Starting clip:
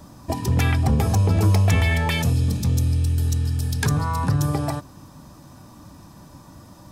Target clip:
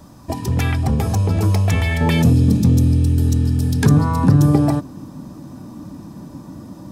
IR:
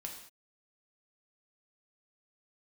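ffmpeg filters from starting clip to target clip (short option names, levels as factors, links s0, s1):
-af "asetnsamples=n=441:p=0,asendcmd='2.01 equalizer g 14',equalizer=f=250:w=0.62:g=2"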